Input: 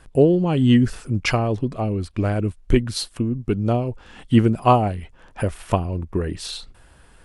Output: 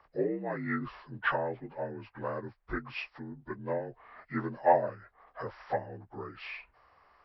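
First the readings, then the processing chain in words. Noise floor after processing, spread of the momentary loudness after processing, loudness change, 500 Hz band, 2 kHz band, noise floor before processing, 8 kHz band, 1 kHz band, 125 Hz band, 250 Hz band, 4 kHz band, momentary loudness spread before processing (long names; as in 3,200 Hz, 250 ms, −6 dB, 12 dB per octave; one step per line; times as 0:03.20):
−71 dBFS, 16 LU, −13.5 dB, −10.5 dB, −5.0 dB, −51 dBFS, below −40 dB, −8.5 dB, −23.0 dB, −19.0 dB, −19.5 dB, 11 LU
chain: partials spread apart or drawn together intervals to 82%
three-way crossover with the lows and the highs turned down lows −20 dB, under 560 Hz, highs −20 dB, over 2,300 Hz
level −2 dB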